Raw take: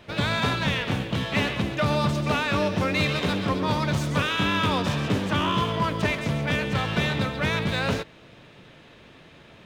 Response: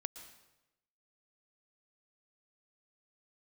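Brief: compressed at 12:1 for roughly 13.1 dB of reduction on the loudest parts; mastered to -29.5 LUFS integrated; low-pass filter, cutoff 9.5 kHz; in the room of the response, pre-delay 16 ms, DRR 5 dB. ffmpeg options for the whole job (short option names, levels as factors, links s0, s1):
-filter_complex "[0:a]lowpass=9500,acompressor=threshold=0.0224:ratio=12,asplit=2[s0][s1];[1:a]atrim=start_sample=2205,adelay=16[s2];[s1][s2]afir=irnorm=-1:irlink=0,volume=0.708[s3];[s0][s3]amix=inputs=2:normalize=0,volume=2"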